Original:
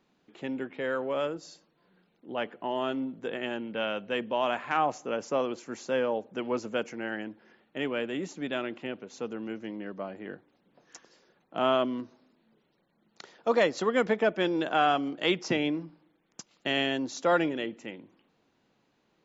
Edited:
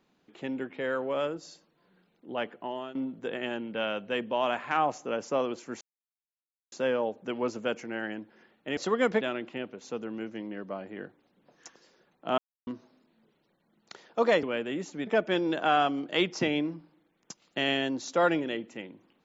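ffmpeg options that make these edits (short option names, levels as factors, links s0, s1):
-filter_complex "[0:a]asplit=9[s0][s1][s2][s3][s4][s5][s6][s7][s8];[s0]atrim=end=2.95,asetpts=PTS-STARTPTS,afade=t=out:st=2.32:d=0.63:c=qsin:silence=0.158489[s9];[s1]atrim=start=2.95:end=5.81,asetpts=PTS-STARTPTS,afade=t=in:d=0.004:c=hsin:silence=0.158489,afade=t=out:st=2.856:d=0.004:c=hsin,apad=pad_dur=0.91[s10];[s2]atrim=start=5.81:end=7.862,asetpts=PTS-STARTPTS,afade=t=in:d=0.004:c=hsin[s11];[s3]atrim=start=13.718:end=14.162[s12];[s4]atrim=start=8.498:end=11.67,asetpts=PTS-STARTPTS,afade=t=out:st=3.168:d=0.004:c=hsin[s13];[s5]atrim=start=11.67:end=11.96,asetpts=PTS-STARTPTS,volume=0[s14];[s6]atrim=start=11.96:end=13.722,asetpts=PTS-STARTPTS,afade=t=in:d=0.004:c=hsin[s15];[s7]atrim=start=7.858:end=8.502[s16];[s8]atrim=start=14.158[s17];[s9][s10][s11]concat=n=3:v=0:a=1[s18];[s18][s12]acrossfade=d=0.004:c1=hsin:c2=hsin[s19];[s13][s14][s15]concat=n=3:v=0:a=1[s20];[s19][s20]acrossfade=d=0.004:c1=hsin:c2=hsin[s21];[s21][s16]acrossfade=d=0.004:c1=hsin:c2=hsin[s22];[s22][s17]acrossfade=d=0.004:c1=hsin:c2=hsin"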